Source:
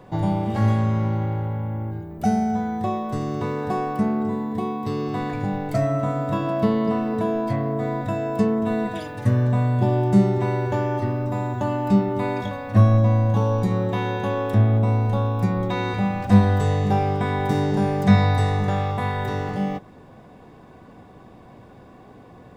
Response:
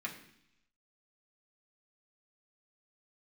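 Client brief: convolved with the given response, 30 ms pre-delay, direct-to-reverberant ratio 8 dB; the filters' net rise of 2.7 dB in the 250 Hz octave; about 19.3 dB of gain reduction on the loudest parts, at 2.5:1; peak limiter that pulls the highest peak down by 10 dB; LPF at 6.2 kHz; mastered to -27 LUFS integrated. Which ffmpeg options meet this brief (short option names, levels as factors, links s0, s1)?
-filter_complex "[0:a]lowpass=6200,equalizer=f=250:t=o:g=3.5,acompressor=threshold=0.0112:ratio=2.5,alimiter=level_in=2.24:limit=0.0631:level=0:latency=1,volume=0.447,asplit=2[s0][s1];[1:a]atrim=start_sample=2205,adelay=30[s2];[s1][s2]afir=irnorm=-1:irlink=0,volume=0.335[s3];[s0][s3]amix=inputs=2:normalize=0,volume=3.76"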